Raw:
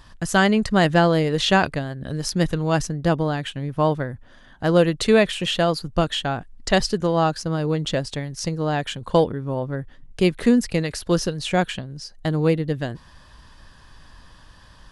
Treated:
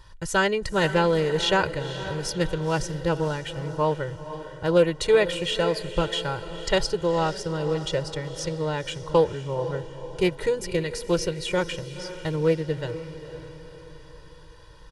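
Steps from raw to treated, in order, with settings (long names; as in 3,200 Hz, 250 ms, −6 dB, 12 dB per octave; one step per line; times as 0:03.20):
comb filter 2.1 ms, depth 94%
on a send: feedback delay with all-pass diffusion 505 ms, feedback 48%, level −12 dB
on the sum: highs frequency-modulated by the lows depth 0.1 ms
level −6 dB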